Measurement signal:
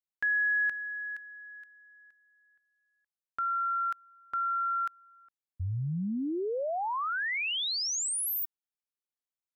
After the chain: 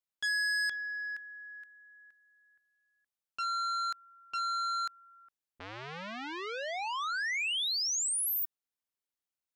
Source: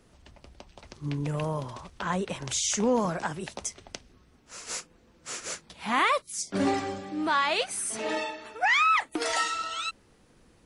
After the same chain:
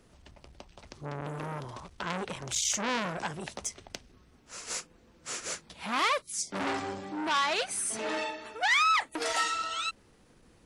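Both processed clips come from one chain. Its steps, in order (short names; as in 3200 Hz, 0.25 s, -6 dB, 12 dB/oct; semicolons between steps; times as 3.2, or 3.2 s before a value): core saturation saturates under 2900 Hz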